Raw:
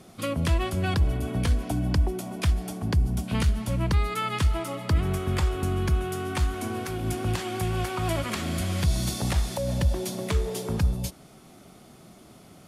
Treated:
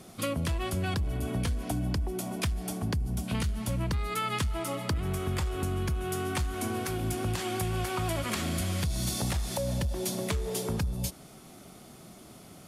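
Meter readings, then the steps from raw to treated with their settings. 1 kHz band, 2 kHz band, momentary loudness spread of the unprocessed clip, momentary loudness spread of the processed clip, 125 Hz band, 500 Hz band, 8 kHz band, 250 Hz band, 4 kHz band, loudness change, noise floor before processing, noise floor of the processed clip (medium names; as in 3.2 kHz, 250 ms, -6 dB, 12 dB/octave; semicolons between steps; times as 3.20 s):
-3.0 dB, -3.0 dB, 4 LU, 6 LU, -5.5 dB, -3.0 dB, +0.5 dB, -3.5 dB, -2.0 dB, -4.5 dB, -51 dBFS, -51 dBFS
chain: saturation -16 dBFS, distortion -20 dB; compression, threshold -27 dBFS, peak gain reduction 7.5 dB; treble shelf 5.8 kHz +5 dB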